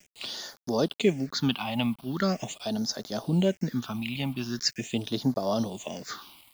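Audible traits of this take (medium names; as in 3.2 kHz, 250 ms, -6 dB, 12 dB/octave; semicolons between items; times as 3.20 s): a quantiser's noise floor 8-bit, dither none; phasing stages 6, 0.42 Hz, lowest notch 420–2600 Hz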